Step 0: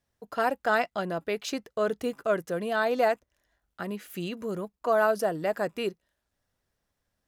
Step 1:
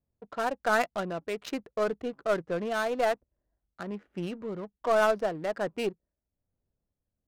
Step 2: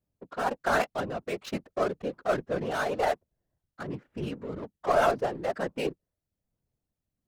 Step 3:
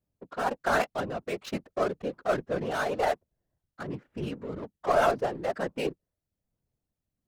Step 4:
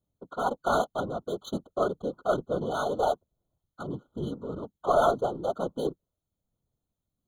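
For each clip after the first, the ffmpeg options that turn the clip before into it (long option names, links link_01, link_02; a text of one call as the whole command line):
ffmpeg -i in.wav -af "adynamicsmooth=sensitivity=8:basefreq=550,tremolo=f=1.2:d=0.34,aeval=exprs='0.251*(cos(1*acos(clip(val(0)/0.251,-1,1)))-cos(1*PI/2))+0.02*(cos(4*acos(clip(val(0)/0.251,-1,1)))-cos(4*PI/2))+0.00501*(cos(6*acos(clip(val(0)/0.251,-1,1)))-cos(6*PI/2))+0.00178*(cos(8*acos(clip(val(0)/0.251,-1,1)))-cos(8*PI/2))':channel_layout=same" out.wav
ffmpeg -i in.wav -af "afftfilt=real='hypot(re,im)*cos(2*PI*random(0))':imag='hypot(re,im)*sin(2*PI*random(1))':win_size=512:overlap=0.75,volume=6dB" out.wav
ffmpeg -i in.wav -af anull out.wav
ffmpeg -i in.wav -af "afftfilt=real='re*eq(mod(floor(b*sr/1024/1500),2),0)':imag='im*eq(mod(floor(b*sr/1024/1500),2),0)':win_size=1024:overlap=0.75,volume=1dB" out.wav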